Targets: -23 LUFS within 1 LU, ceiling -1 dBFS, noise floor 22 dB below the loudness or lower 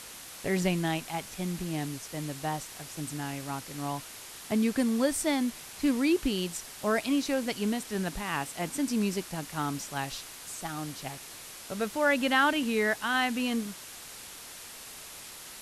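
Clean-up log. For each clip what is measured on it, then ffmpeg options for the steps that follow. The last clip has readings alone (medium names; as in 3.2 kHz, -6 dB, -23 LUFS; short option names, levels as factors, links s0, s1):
noise floor -46 dBFS; noise floor target -53 dBFS; loudness -30.5 LUFS; peak level -12.0 dBFS; loudness target -23.0 LUFS
-> -af "afftdn=nr=7:nf=-46"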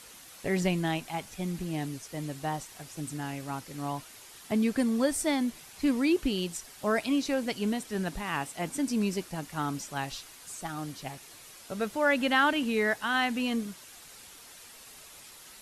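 noise floor -51 dBFS; noise floor target -53 dBFS
-> -af "afftdn=nr=6:nf=-51"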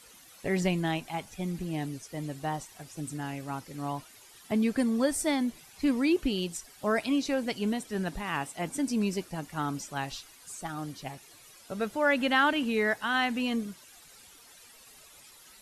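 noise floor -54 dBFS; loudness -30.5 LUFS; peak level -12.0 dBFS; loudness target -23.0 LUFS
-> -af "volume=2.37"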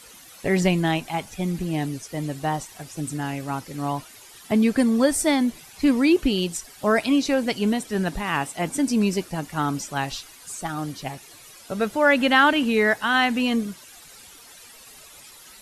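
loudness -23.0 LUFS; peak level -4.5 dBFS; noise floor -47 dBFS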